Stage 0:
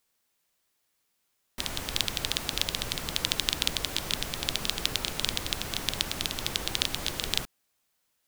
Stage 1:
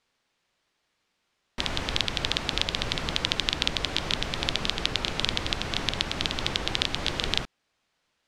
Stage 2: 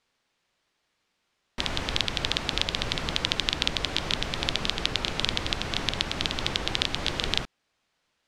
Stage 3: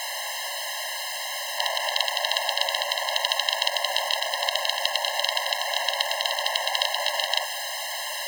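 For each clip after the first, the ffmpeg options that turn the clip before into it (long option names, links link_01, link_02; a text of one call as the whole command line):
ffmpeg -i in.wav -filter_complex "[0:a]lowpass=4300,asplit=2[link_01][link_02];[link_02]alimiter=limit=-12dB:level=0:latency=1:release=393,volume=0dB[link_03];[link_01][link_03]amix=inputs=2:normalize=0" out.wav
ffmpeg -i in.wav -af anull out.wav
ffmpeg -i in.wav -af "aeval=exprs='val(0)+0.5*0.0447*sgn(val(0))':channel_layout=same,afftfilt=real='re*eq(mod(floor(b*sr/1024/540),2),1)':imag='im*eq(mod(floor(b*sr/1024/540),2),1)':win_size=1024:overlap=0.75,volume=5dB" out.wav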